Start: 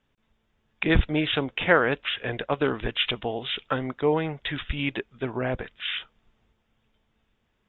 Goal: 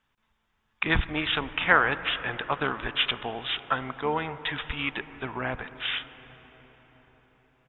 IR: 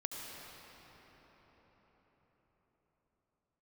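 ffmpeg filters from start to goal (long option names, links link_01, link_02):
-filter_complex "[0:a]lowshelf=frequency=730:width_type=q:width=1.5:gain=-7.5,asplit=2[link_01][link_02];[link_02]asetrate=22050,aresample=44100,atempo=2,volume=-16dB[link_03];[link_01][link_03]amix=inputs=2:normalize=0,asplit=2[link_04][link_05];[1:a]atrim=start_sample=2205,lowpass=2200[link_06];[link_05][link_06]afir=irnorm=-1:irlink=0,volume=-10.5dB[link_07];[link_04][link_07]amix=inputs=2:normalize=0"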